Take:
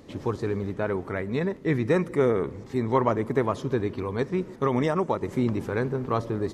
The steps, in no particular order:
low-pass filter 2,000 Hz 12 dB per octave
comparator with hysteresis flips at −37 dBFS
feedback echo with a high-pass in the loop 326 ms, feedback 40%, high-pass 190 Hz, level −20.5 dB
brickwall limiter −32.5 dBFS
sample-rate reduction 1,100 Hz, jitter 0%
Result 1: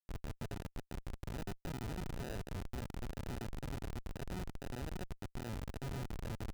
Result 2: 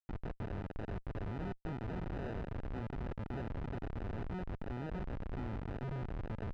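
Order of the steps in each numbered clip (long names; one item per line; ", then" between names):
low-pass filter, then brickwall limiter, then feedback echo with a high-pass in the loop, then sample-rate reduction, then comparator with hysteresis
feedback echo with a high-pass in the loop, then sample-rate reduction, then brickwall limiter, then comparator with hysteresis, then low-pass filter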